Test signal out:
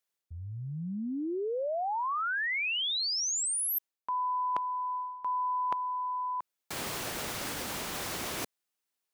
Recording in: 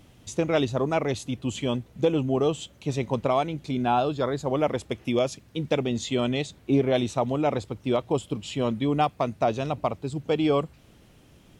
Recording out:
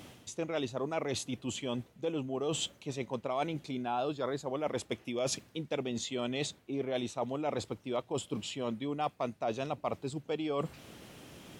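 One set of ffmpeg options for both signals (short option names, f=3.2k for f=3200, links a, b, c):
-af "areverse,acompressor=threshold=-37dB:ratio=10,areverse,highpass=f=240:p=1,volume=7dB"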